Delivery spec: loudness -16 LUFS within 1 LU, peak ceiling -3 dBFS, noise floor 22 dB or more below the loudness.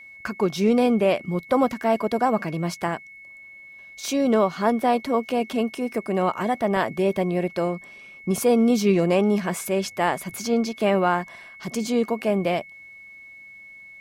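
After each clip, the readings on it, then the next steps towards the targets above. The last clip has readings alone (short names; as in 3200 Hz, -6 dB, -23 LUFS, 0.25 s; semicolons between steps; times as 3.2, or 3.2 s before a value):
steady tone 2200 Hz; tone level -42 dBFS; loudness -23.0 LUFS; peak -8.5 dBFS; loudness target -16.0 LUFS
-> notch 2200 Hz, Q 30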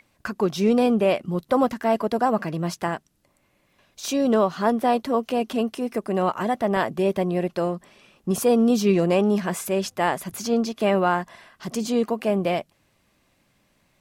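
steady tone none; loudness -23.0 LUFS; peak -8.5 dBFS; loudness target -16.0 LUFS
-> gain +7 dB; limiter -3 dBFS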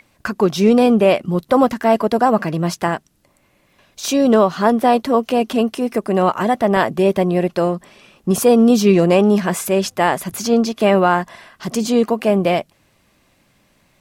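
loudness -16.5 LUFS; peak -3.0 dBFS; noise floor -59 dBFS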